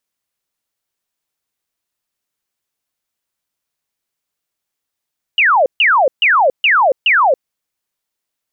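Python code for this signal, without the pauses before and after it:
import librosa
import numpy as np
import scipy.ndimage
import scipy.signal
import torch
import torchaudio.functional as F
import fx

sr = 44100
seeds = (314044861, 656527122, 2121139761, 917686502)

y = fx.laser_zaps(sr, level_db=-8.0, start_hz=3000.0, end_hz=490.0, length_s=0.28, wave='sine', shots=5, gap_s=0.14)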